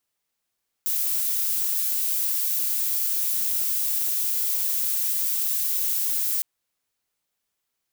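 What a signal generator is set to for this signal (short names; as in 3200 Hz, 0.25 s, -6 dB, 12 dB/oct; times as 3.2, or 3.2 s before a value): noise violet, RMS -24.5 dBFS 5.56 s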